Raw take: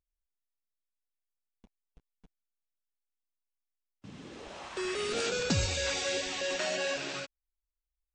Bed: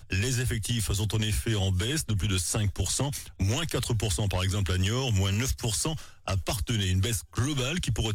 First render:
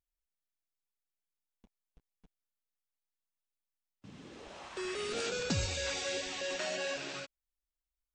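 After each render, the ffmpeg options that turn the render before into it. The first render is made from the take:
-af "volume=-4dB"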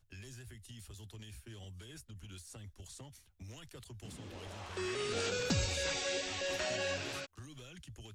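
-filter_complex "[1:a]volume=-23dB[a];[0:a][a]amix=inputs=2:normalize=0"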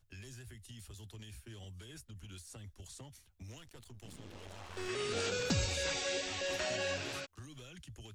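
-filter_complex "[0:a]asettb=1/sr,asplit=3[a][b][c];[a]atrim=end=3.584[d];[b]atrim=start=3.58:end=4.89,asetpts=PTS-STARTPTS,afade=t=in:d=0.004:c=qsin,afade=t=out:st=1.306:d=0.004:c=qsin,aeval=exprs='if(lt(val(0),0),0.251*val(0),val(0))':c=same[e];[c]atrim=start=4.886[f];[d][e]acrossfade=d=0.004:c1=hsin:c2=qsin[g];[g][f]acrossfade=d=0.004:c1=qsin:c2=hsin"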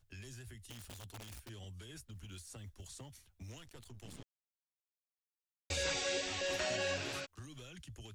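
-filter_complex "[0:a]asplit=3[a][b][c];[a]afade=t=out:st=0.69:d=0.02[d];[b]aeval=exprs='(mod(158*val(0)+1,2)-1)/158':c=same,afade=t=in:st=0.69:d=0.02,afade=t=out:st=1.48:d=0.02[e];[c]afade=t=in:st=1.48:d=0.02[f];[d][e][f]amix=inputs=3:normalize=0,asettb=1/sr,asplit=3[g][h][i];[g]atrim=end=2.064[j];[h]atrim=start=2.06:end=3.61,asetpts=PTS-STARTPTS,afade=t=in:d=0.004:c=qsin,afade=t=out:st=1.546:d=0.004:c=qsin,acrusher=bits=8:mode=log:mix=0:aa=0.000001[k];[i]atrim=start=3.606[l];[j][k]acrossfade=d=0.004:c1=hsin:c2=qsin[m];[m][l]acrossfade=d=0.004:c1=qsin:c2=hsin,asplit=3[n][o][p];[n]atrim=end=4.23,asetpts=PTS-STARTPTS,afade=t=out:st=4.226:d=0.004:c=hsin[q];[o]atrim=start=4.23:end=5.7,asetpts=PTS-STARTPTS,volume=0[r];[p]atrim=start=5.7,asetpts=PTS-STARTPTS,afade=t=in:d=0.004:c=hsin[s];[q][r][s]concat=n=3:v=0:a=1"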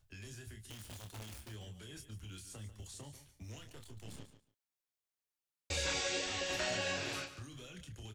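-filter_complex "[0:a]asplit=2[a][b];[b]adelay=28,volume=-6dB[c];[a][c]amix=inputs=2:normalize=0,aecho=1:1:143|286:0.237|0.0379"

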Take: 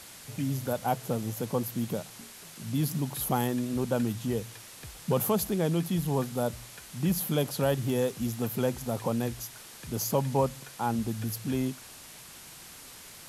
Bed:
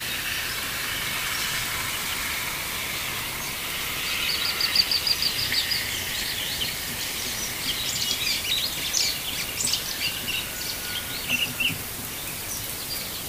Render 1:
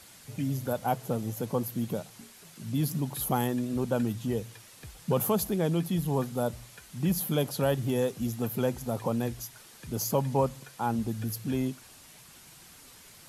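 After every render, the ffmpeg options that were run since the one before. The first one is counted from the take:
-af "afftdn=nr=6:nf=-48"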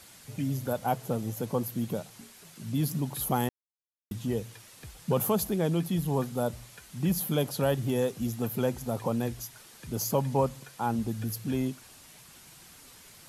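-filter_complex "[0:a]asplit=3[a][b][c];[a]atrim=end=3.49,asetpts=PTS-STARTPTS,afade=t=out:st=3.486:d=0.004:c=hsin[d];[b]atrim=start=3.49:end=4.11,asetpts=PTS-STARTPTS,volume=0[e];[c]atrim=start=4.11,asetpts=PTS-STARTPTS,afade=t=in:d=0.004:c=hsin[f];[d][e][f]concat=n=3:v=0:a=1"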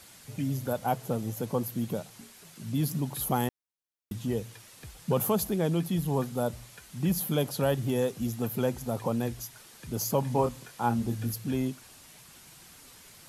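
-filter_complex "[0:a]asettb=1/sr,asplit=3[a][b][c];[a]atrim=end=10.204[d];[b]atrim=start=10.2:end=11.34,asetpts=PTS-STARTPTS,afade=t=in:d=0.004:c=qsin,afade=t=out:st=1.136:d=0.004:c=qsin,asplit=2[e][f];[f]adelay=25,volume=-6dB[g];[e][g]amix=inputs=2:normalize=0,atrim=end_sample=50274[h];[c]atrim=start=11.336[i];[d][h]acrossfade=d=0.004:c1=hsin:c2=qsin[j];[j][i]acrossfade=d=0.004:c1=qsin:c2=hsin"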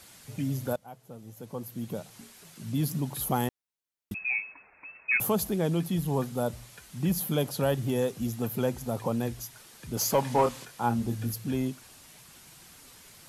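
-filter_complex "[0:a]asettb=1/sr,asplit=3[a][b][c];[a]atrim=end=4.144[d];[b]atrim=start=4.14:end=5.2,asetpts=PTS-STARTPTS,afade=t=in:d=0.004:c=qsin,afade=t=out:st=1.056:d=0.004:c=qsin,lowpass=f=2.3k:t=q:w=0.5098,lowpass=f=2.3k:t=q:w=0.6013,lowpass=f=2.3k:t=q:w=0.9,lowpass=f=2.3k:t=q:w=2.563,afreqshift=-2700[e];[c]atrim=start=5.196[f];[d][e]acrossfade=d=0.004:c1=hsin:c2=qsin[g];[g][f]acrossfade=d=0.004:c1=qsin:c2=hsin,asettb=1/sr,asplit=3[h][i][j];[h]atrim=end=9.974[k];[i]atrim=start=9.97:end=10.65,asetpts=PTS-STARTPTS,afade=t=in:d=0.004:c=qsin,afade=t=out:st=0.676:d=0.004:c=qsin,asplit=2[l][m];[m]highpass=f=720:p=1,volume=13dB,asoftclip=type=tanh:threshold=-12dB[n];[l][n]amix=inputs=2:normalize=0,lowpass=f=6.4k:p=1,volume=-6dB[o];[j]atrim=start=10.646[p];[k][o]acrossfade=d=0.004:c1=hsin:c2=qsin[q];[q][p]acrossfade=d=0.004:c1=qsin:c2=hsin,asplit=2[r][s];[r]atrim=end=0.76,asetpts=PTS-STARTPTS,afade=t=out:st=0.756:d=0.004:c=hsin:silence=0.11885[t];[s]atrim=start=0.76,asetpts=PTS-STARTPTS,afade=t=in:d=1.43:c=qua:silence=0.11885[u];[t][u]concat=n=2:v=0:a=1"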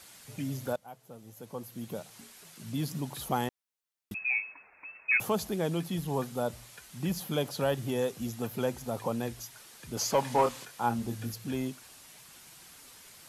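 -filter_complex "[0:a]acrossover=split=8000[a][b];[b]acompressor=threshold=-46dB:ratio=4:attack=1:release=60[c];[a][c]amix=inputs=2:normalize=0,lowshelf=f=320:g=-6.5"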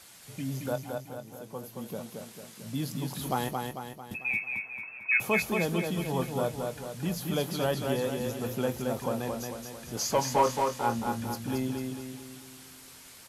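-filter_complex "[0:a]asplit=2[a][b];[b]adelay=23,volume=-12dB[c];[a][c]amix=inputs=2:normalize=0,aecho=1:1:223|446|669|892|1115|1338|1561:0.631|0.322|0.164|0.0837|0.0427|0.0218|0.0111"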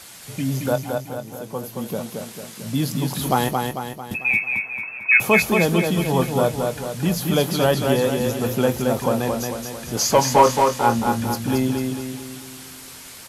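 -af "volume=10.5dB"

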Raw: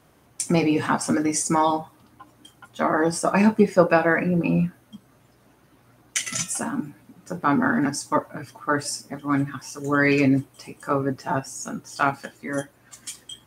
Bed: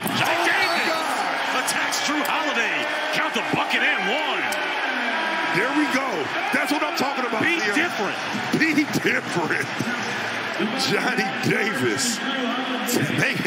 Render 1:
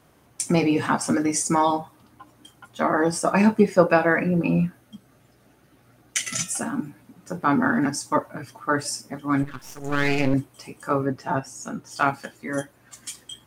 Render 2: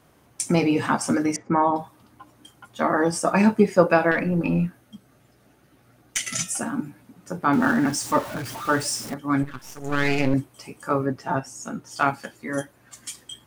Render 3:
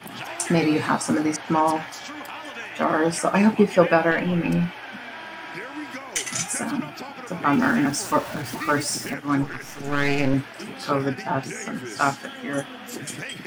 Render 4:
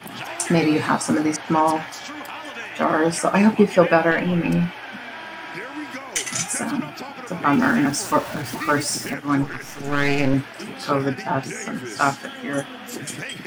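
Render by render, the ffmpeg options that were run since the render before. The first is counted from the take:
-filter_complex "[0:a]asettb=1/sr,asplit=3[a][b][c];[a]atrim=end=4.824[d];[b]atrim=start=4.82:end=6.7,asetpts=PTS-STARTPTS,afade=t=in:d=0.004:c=qsin,afade=t=out:st=1.876:d=0.004:c=qsin,bandreject=f=1k:w=5.6[e];[c]atrim=start=6.696[f];[d][e]acrossfade=d=0.004:c1=hsin:c2=qsin[g];[g][f]acrossfade=d=0.004:c1=qsin:c2=hsin,asettb=1/sr,asplit=3[h][i][j];[h]atrim=end=9.434[k];[i]atrim=start=9.43:end=10.34,asetpts=PTS-STARTPTS,afade=t=in:d=0.004:c=qsin,afade=t=out:st=0.906:d=0.004:c=qsin,aeval=exprs='max(val(0),0)':c=same[l];[j]atrim=start=10.336[m];[k][l]acrossfade=d=0.004:c1=hsin:c2=qsin[n];[n][m]acrossfade=d=0.004:c1=qsin:c2=hsin,asettb=1/sr,asplit=3[o][p][q];[o]atrim=end=11.064[r];[p]atrim=start=11.06:end=11.91,asetpts=PTS-STARTPTS,afade=t=in:d=0.004:c=qsin,afade=t=out:st=0.846:d=0.004:c=qsin,highshelf=f=5.8k:g=-7[s];[q]atrim=start=11.906[t];[r][s]acrossfade=d=0.004:c1=hsin:c2=qsin[u];[u][t]acrossfade=d=0.004:c1=qsin:c2=hsin"
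-filter_complex "[0:a]asettb=1/sr,asplit=3[a][b][c];[a]atrim=end=1.364[d];[b]atrim=start=1.36:end=1.76,asetpts=PTS-STARTPTS,afade=t=in:d=0.004:c=qsin,afade=t=out:st=0.396:d=0.004:c=qsin,lowpass=f=2k:w=0.5412,lowpass=f=2k:w=1.3066[e];[c]atrim=start=1.756[f];[d][e]acrossfade=d=0.004:c1=hsin:c2=qsin[g];[g][f]acrossfade=d=0.004:c1=qsin:c2=hsin,asettb=1/sr,asplit=3[h][i][j];[h]atrim=end=4.114[k];[i]atrim=start=4.11:end=6.19,asetpts=PTS-STARTPTS,afade=t=in:d=0.004:c=qsin,afade=t=out:st=2.076:d=0.004:c=qsin,aeval=exprs='(tanh(3.55*val(0)+0.25)-tanh(0.25))/3.55':c=same[l];[j]atrim=start=6.186[m];[k][l]acrossfade=d=0.004:c1=hsin:c2=qsin[n];[n][m]acrossfade=d=0.004:c1=qsin:c2=hsin,asettb=1/sr,asplit=3[o][p][q];[o]atrim=end=7.534[r];[p]atrim=start=7.53:end=9.14,asetpts=PTS-STARTPTS,afade=t=in:d=0.004:c=qsin,afade=t=out:st=1.606:d=0.004:c=qsin,aeval=exprs='val(0)+0.5*0.0282*sgn(val(0))':c=same[s];[q]atrim=start=9.136[t];[r][s]acrossfade=d=0.004:c1=hsin:c2=qsin[u];[u][t]acrossfade=d=0.004:c1=qsin:c2=hsin"
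-filter_complex "[1:a]volume=-13.5dB[a];[0:a][a]amix=inputs=2:normalize=0"
-af "volume=2dB,alimiter=limit=-1dB:level=0:latency=1"

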